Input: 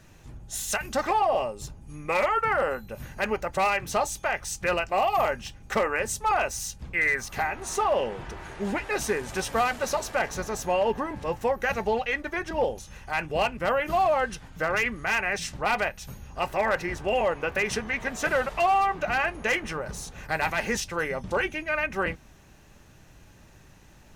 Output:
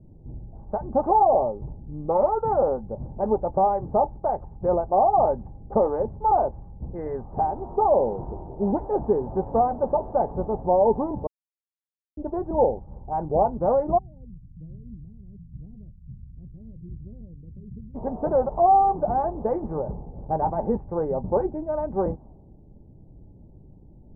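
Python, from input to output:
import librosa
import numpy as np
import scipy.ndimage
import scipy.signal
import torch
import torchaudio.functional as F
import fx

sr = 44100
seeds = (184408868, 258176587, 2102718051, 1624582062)

y = fx.ladder_lowpass(x, sr, hz=200.0, resonance_pct=25, at=(13.97, 17.94), fade=0.02)
y = fx.edit(y, sr, fx.silence(start_s=11.27, length_s=0.9), tone=tone)
y = fx.wiener(y, sr, points=9)
y = fx.env_lowpass(y, sr, base_hz=320.0, full_db=-23.0)
y = scipy.signal.sosfilt(scipy.signal.ellip(4, 1.0, 80, 880.0, 'lowpass', fs=sr, output='sos'), y)
y = y * 10.0 ** (6.5 / 20.0)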